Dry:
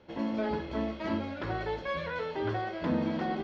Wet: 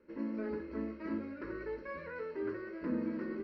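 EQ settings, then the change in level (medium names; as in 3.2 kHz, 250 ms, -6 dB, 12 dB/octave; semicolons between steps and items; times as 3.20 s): boxcar filter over 13 samples; bass shelf 170 Hz -6.5 dB; static phaser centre 310 Hz, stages 4; -1.5 dB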